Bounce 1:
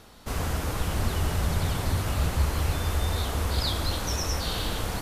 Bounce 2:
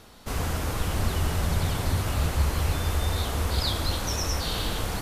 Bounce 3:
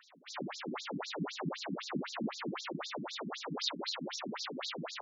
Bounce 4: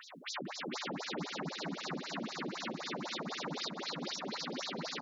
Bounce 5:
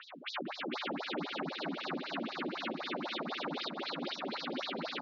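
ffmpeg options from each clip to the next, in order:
-af "bandreject=f=60.49:t=h:w=4,bandreject=f=120.98:t=h:w=4,bandreject=f=181.47:t=h:w=4,bandreject=f=241.96:t=h:w=4,bandreject=f=302.45:t=h:w=4,bandreject=f=362.94:t=h:w=4,bandreject=f=423.43:t=h:w=4,bandreject=f=483.92:t=h:w=4,bandreject=f=544.41:t=h:w=4,bandreject=f=604.9:t=h:w=4,bandreject=f=665.39:t=h:w=4,bandreject=f=725.88:t=h:w=4,bandreject=f=786.37:t=h:w=4,bandreject=f=846.86:t=h:w=4,bandreject=f=907.35:t=h:w=4,bandreject=f=967.84:t=h:w=4,bandreject=f=1028.33:t=h:w=4,bandreject=f=1088.82:t=h:w=4,bandreject=f=1149.31:t=h:w=4,bandreject=f=1209.8:t=h:w=4,bandreject=f=1270.29:t=h:w=4,bandreject=f=1330.78:t=h:w=4,bandreject=f=1391.27:t=h:w=4,bandreject=f=1451.76:t=h:w=4,bandreject=f=1512.25:t=h:w=4,bandreject=f=1572.74:t=h:w=4,bandreject=f=1633.23:t=h:w=4,bandreject=f=1693.72:t=h:w=4,bandreject=f=1754.21:t=h:w=4,bandreject=f=1814.7:t=h:w=4,bandreject=f=1875.19:t=h:w=4,bandreject=f=1935.68:t=h:w=4,volume=1.12"
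-af "highshelf=f=4500:g=-6.5,aeval=exprs='abs(val(0))':c=same,afftfilt=real='re*between(b*sr/1024,220*pow(5300/220,0.5+0.5*sin(2*PI*3.9*pts/sr))/1.41,220*pow(5300/220,0.5+0.5*sin(2*PI*3.9*pts/sr))*1.41)':imag='im*between(b*sr/1024,220*pow(5300/220,0.5+0.5*sin(2*PI*3.9*pts/sr))/1.41,220*pow(5300/220,0.5+0.5*sin(2*PI*3.9*pts/sr))*1.41)':win_size=1024:overlap=0.75,volume=1.26"
-filter_complex "[0:a]acompressor=threshold=0.00398:ratio=12,asplit=2[s0][s1];[s1]aecho=0:1:453|906|1359|1812:0.708|0.212|0.0637|0.0191[s2];[s0][s2]amix=inputs=2:normalize=0,volume=2.99"
-af "highpass=f=190:w=0.5412,highpass=f=190:w=1.3066,equalizer=f=200:t=q:w=4:g=-5,equalizer=f=450:t=q:w=4:g=-4,equalizer=f=1000:t=q:w=4:g=-4,equalizer=f=1900:t=q:w=4:g=-5,lowpass=f=3700:w=0.5412,lowpass=f=3700:w=1.3066,volume=1.68"

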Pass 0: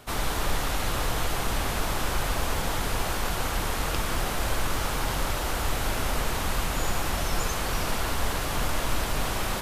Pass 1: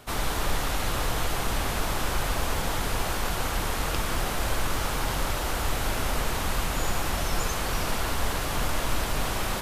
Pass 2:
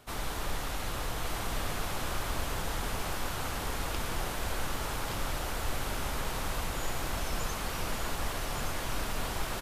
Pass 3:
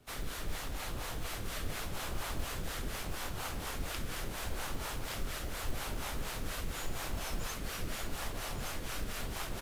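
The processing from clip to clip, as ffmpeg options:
-af anull
-af "aecho=1:1:1169:0.596,volume=0.422"
-filter_complex "[0:a]acrossover=split=370|950[s0][s1][s2];[s1]acrusher=samples=24:mix=1:aa=0.000001:lfo=1:lforange=24:lforate=0.8[s3];[s0][s3][s2]amix=inputs=3:normalize=0,acrossover=split=500[s4][s5];[s4]aeval=exprs='val(0)*(1-0.7/2+0.7/2*cos(2*PI*4.2*n/s))':c=same[s6];[s5]aeval=exprs='val(0)*(1-0.7/2-0.7/2*cos(2*PI*4.2*n/s))':c=same[s7];[s6][s7]amix=inputs=2:normalize=0,acrusher=bits=7:mode=log:mix=0:aa=0.000001,volume=0.891"

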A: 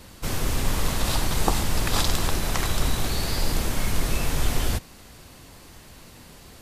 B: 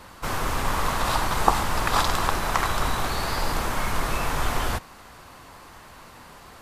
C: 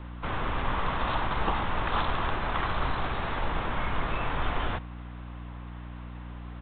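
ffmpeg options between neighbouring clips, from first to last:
-af "equalizer=f=1100:w=0.74:g=13.5,volume=0.631"
-filter_complex "[0:a]aeval=exprs='val(0)+0.0178*(sin(2*PI*60*n/s)+sin(2*PI*2*60*n/s)/2+sin(2*PI*3*60*n/s)/3+sin(2*PI*4*60*n/s)/4+sin(2*PI*5*60*n/s)/5)':c=same,acrossover=split=350[s0][s1];[s1]asoftclip=type=hard:threshold=0.106[s2];[s0][s2]amix=inputs=2:normalize=0,aresample=8000,aresample=44100,volume=0.631"

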